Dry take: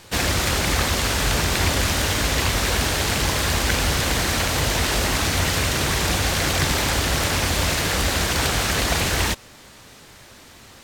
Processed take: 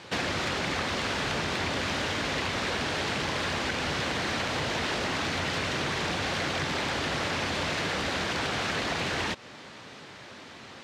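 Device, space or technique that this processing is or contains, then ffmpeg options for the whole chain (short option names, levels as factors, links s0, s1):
AM radio: -af "highpass=140,lowpass=4100,acompressor=threshold=0.0398:ratio=5,asoftclip=type=tanh:threshold=0.0708,volume=1.26"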